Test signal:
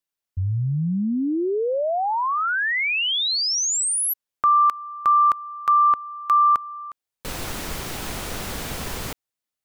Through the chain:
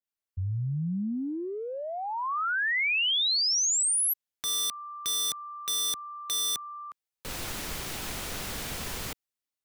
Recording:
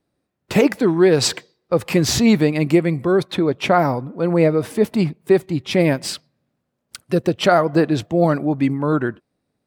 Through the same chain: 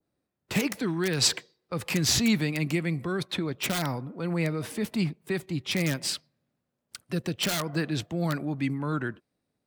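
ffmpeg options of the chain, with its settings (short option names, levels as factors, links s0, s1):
-filter_complex "[0:a]acrossover=split=250|1100|3200[s0][s1][s2][s3];[s1]acompressor=threshold=0.0355:ratio=6:attack=2.8:release=27:knee=6[s4];[s2]aeval=exprs='(mod(11.2*val(0)+1,2)-1)/11.2':c=same[s5];[s0][s4][s5][s3]amix=inputs=4:normalize=0,adynamicequalizer=threshold=0.0112:dfrequency=1600:dqfactor=0.7:tfrequency=1600:tqfactor=0.7:attack=5:release=100:ratio=0.375:range=2:mode=boostabove:tftype=highshelf,volume=0.447"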